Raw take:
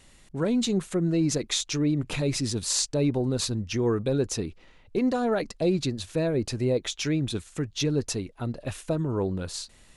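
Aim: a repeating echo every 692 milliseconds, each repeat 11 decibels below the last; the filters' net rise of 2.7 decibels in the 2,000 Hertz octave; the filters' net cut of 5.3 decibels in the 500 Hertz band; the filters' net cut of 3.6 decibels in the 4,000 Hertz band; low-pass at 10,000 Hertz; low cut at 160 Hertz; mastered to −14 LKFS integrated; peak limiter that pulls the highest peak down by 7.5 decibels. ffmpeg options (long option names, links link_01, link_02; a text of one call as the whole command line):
ffmpeg -i in.wav -af "highpass=160,lowpass=10000,equalizer=frequency=500:width_type=o:gain=-7,equalizer=frequency=2000:width_type=o:gain=5.5,equalizer=frequency=4000:width_type=o:gain=-5.5,alimiter=limit=-21.5dB:level=0:latency=1,aecho=1:1:692|1384|2076:0.282|0.0789|0.0221,volume=18dB" out.wav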